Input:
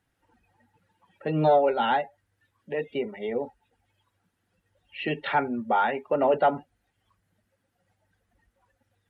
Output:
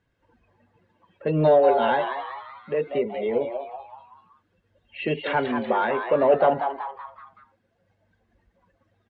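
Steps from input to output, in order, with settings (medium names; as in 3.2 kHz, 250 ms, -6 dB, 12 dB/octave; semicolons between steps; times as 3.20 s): peaking EQ 250 Hz +7.5 dB 1.1 oct; comb 1.9 ms, depth 52%; in parallel at -9 dB: saturation -17 dBFS, distortion -13 dB; on the sum: distance through air 110 m; frequency-shifting echo 189 ms, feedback 46%, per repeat +130 Hz, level -7.5 dB; trim -1.5 dB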